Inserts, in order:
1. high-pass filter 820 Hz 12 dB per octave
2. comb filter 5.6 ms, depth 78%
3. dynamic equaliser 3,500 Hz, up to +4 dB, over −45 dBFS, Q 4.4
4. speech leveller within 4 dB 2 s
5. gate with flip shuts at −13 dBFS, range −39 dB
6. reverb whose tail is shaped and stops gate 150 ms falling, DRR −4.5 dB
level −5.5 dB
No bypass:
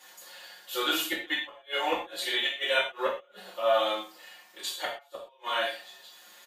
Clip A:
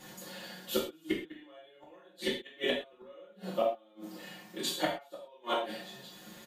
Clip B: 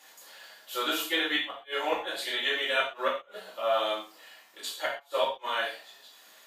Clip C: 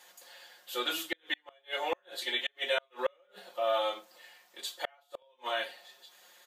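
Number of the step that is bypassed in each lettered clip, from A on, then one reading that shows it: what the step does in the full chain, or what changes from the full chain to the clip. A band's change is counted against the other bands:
1, 250 Hz band +9.5 dB
2, 8 kHz band −2.0 dB
6, 250 Hz band −2.0 dB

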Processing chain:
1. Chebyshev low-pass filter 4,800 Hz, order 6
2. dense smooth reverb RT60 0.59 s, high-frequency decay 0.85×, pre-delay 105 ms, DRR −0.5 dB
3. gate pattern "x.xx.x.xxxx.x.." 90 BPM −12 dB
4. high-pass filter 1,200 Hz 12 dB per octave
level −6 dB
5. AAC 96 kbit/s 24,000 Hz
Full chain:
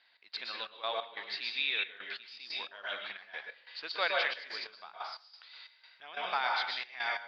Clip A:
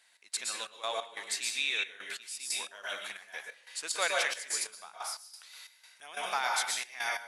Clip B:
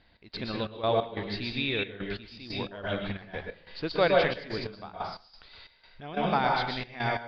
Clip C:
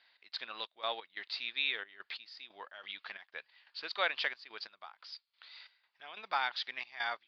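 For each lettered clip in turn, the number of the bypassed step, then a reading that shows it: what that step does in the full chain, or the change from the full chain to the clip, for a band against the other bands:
1, change in integrated loudness +2.0 LU
4, 250 Hz band +22.5 dB
2, change in momentary loudness spread +2 LU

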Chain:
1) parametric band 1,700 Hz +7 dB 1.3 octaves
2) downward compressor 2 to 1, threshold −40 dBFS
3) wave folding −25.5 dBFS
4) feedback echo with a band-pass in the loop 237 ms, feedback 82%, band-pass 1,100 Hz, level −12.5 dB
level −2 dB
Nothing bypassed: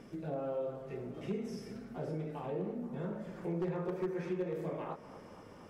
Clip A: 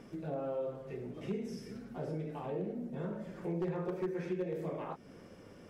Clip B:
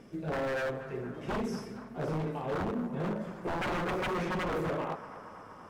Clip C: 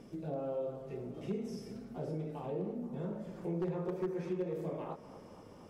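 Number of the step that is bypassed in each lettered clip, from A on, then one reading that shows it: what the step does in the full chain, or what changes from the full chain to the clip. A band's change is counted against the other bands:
4, echo-to-direct ratio −11.0 dB to none audible
2, average gain reduction 6.5 dB
1, 2 kHz band −5.0 dB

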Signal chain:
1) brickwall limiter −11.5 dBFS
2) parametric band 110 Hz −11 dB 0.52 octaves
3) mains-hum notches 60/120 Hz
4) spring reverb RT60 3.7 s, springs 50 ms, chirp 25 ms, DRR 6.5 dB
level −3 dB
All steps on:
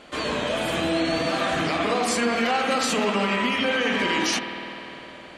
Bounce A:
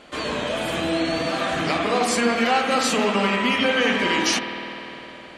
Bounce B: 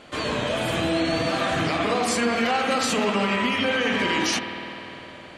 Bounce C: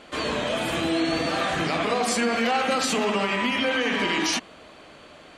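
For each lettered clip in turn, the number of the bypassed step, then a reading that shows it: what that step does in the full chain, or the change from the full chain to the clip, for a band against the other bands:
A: 1, change in integrated loudness +2.0 LU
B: 2, 125 Hz band +3.0 dB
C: 4, change in momentary loudness spread −8 LU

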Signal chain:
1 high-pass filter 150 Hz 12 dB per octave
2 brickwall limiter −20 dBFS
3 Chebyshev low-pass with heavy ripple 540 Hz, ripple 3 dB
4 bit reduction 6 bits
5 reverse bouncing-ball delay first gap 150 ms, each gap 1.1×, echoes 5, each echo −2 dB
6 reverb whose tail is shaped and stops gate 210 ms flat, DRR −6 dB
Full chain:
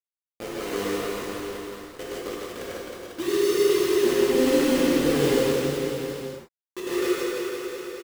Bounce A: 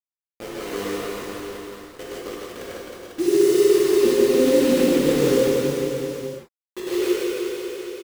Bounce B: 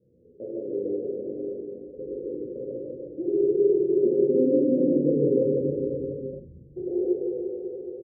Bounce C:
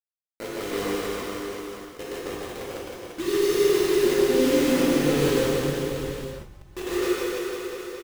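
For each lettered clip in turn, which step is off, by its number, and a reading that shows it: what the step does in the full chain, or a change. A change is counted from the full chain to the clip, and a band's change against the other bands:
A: 2, change in momentary loudness spread +3 LU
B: 4, distortion level −9 dB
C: 1, 125 Hz band +2.5 dB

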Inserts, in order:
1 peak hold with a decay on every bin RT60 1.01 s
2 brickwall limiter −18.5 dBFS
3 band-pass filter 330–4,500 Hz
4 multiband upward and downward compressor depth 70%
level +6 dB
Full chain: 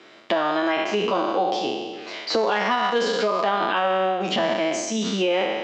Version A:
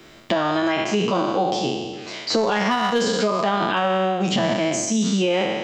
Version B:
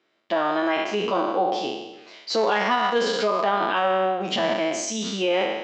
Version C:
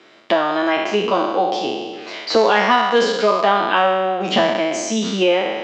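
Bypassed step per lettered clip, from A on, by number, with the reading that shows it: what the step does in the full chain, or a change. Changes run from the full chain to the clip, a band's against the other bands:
3, 125 Hz band +8.0 dB
4, change in momentary loudness spread +2 LU
2, average gain reduction 3.0 dB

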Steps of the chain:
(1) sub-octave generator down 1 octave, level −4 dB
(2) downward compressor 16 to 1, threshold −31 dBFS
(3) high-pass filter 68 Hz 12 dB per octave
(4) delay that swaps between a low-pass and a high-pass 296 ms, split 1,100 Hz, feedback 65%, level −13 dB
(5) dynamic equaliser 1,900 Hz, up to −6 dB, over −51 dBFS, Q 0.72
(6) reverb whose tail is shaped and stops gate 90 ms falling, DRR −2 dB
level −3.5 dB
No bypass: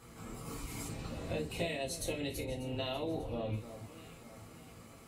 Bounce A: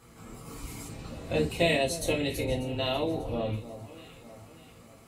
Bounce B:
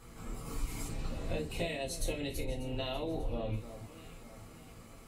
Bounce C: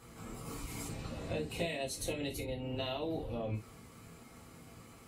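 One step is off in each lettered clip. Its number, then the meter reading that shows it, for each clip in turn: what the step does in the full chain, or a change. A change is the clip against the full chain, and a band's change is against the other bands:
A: 2, average gain reduction 3.5 dB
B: 3, change in crest factor −2.0 dB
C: 4, change in momentary loudness spread +2 LU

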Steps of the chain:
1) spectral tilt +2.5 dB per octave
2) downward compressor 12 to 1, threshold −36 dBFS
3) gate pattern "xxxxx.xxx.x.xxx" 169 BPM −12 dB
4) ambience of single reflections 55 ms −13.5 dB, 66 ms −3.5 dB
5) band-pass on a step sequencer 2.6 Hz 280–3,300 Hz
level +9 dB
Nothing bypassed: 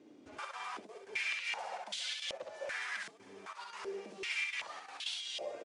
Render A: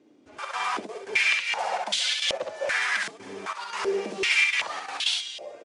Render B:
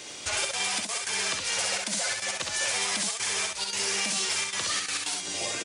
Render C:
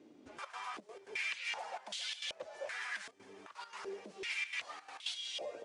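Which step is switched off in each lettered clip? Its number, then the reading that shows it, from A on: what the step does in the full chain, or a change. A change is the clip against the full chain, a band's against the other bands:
2, change in momentary loudness spread +1 LU
5, 8 kHz band +15.0 dB
4, change in integrated loudness −1.5 LU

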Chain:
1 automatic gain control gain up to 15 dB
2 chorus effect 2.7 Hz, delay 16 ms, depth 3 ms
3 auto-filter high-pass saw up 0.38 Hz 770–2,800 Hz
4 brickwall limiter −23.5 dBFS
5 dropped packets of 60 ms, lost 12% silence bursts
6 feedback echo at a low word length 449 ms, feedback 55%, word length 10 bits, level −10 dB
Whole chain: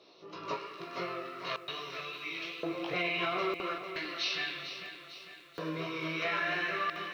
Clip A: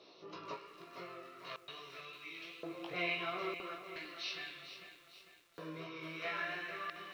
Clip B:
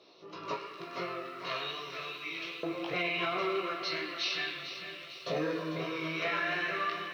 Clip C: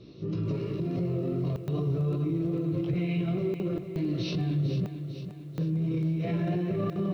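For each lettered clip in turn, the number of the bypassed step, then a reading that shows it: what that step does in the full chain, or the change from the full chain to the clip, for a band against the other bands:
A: 1, change in crest factor +5.5 dB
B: 5, change in momentary loudness spread −3 LU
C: 3, 125 Hz band +31.0 dB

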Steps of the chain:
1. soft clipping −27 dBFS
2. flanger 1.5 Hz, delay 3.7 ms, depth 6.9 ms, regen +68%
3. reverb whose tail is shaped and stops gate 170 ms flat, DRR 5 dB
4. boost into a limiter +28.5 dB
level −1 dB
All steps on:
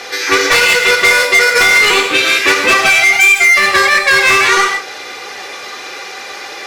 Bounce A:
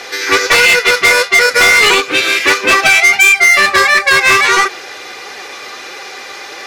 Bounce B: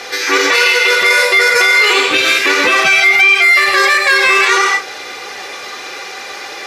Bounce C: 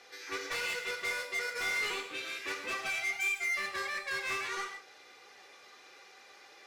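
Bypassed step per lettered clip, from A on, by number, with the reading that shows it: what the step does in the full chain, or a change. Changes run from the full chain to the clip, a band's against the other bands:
3, change in momentary loudness spread +2 LU
1, distortion level −8 dB
4, change in crest factor +4.5 dB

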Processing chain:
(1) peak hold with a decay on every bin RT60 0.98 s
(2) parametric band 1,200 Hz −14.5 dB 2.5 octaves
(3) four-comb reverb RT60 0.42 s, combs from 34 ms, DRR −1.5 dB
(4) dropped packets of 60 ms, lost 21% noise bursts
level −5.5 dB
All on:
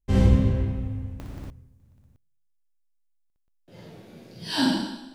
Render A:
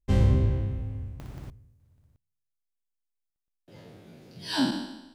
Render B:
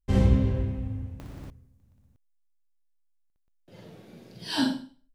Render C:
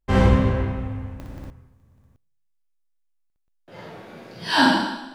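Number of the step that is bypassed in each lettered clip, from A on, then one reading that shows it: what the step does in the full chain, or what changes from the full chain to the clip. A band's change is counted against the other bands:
3, change in integrated loudness −3.0 LU
1, change in integrated loudness −3.0 LU
2, 1 kHz band +9.0 dB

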